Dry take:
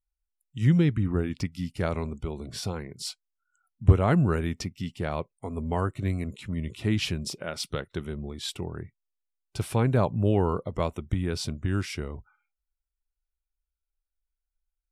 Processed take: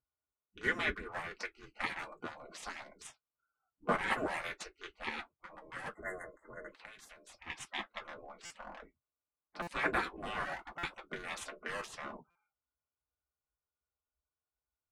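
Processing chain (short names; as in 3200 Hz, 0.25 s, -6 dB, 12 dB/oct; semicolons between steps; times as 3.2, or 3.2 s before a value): Wiener smoothing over 25 samples; low-pass opened by the level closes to 2600 Hz, open at -23 dBFS; 5.46–5.86 resonator 320 Hz, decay 0.17 s, harmonics all, mix 50%; 5.89–6.68 spectral delete 2100–6300 Hz; reverb RT60 0.10 s, pre-delay 3 ms, DRR -2 dB; 6.77–7.5 compressor 20:1, threshold -37 dBFS, peak gain reduction 18 dB; bell 1400 Hz +13 dB 0.73 oct; spectral gate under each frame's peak -20 dB weak; 1.99–3.07 high shelf 6800 Hz +11.5 dB; stuck buffer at 8.45/9.62/10.78/12.3, samples 256, times 8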